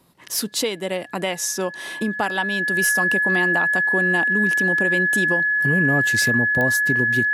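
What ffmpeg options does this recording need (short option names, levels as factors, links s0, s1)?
-af "adeclick=t=4,bandreject=f=1700:w=30"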